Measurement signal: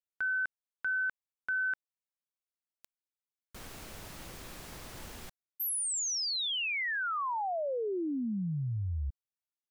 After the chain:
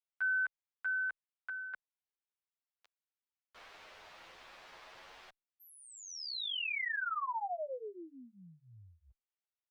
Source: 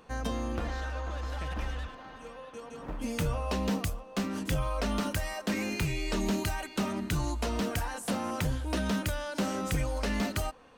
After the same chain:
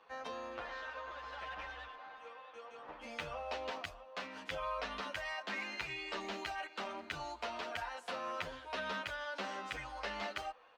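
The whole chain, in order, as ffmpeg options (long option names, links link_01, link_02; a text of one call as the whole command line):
ffmpeg -i in.wav -filter_complex "[0:a]acrossover=split=510 4600:gain=0.0794 1 0.0631[link_01][link_02][link_03];[link_01][link_02][link_03]amix=inputs=3:normalize=0,asplit=2[link_04][link_05];[link_05]adelay=9.4,afreqshift=0.26[link_06];[link_04][link_06]amix=inputs=2:normalize=1" out.wav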